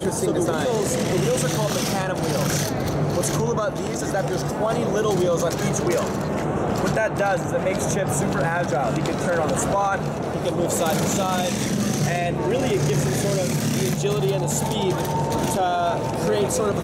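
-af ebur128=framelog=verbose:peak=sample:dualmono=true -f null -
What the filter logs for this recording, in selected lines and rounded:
Integrated loudness:
  I:         -19.4 LUFS
  Threshold: -29.4 LUFS
Loudness range:
  LRA:         0.8 LU
  Threshold: -39.5 LUFS
  LRA low:   -19.9 LUFS
  LRA high:  -19.1 LUFS
Sample peak:
  Peak:      -10.5 dBFS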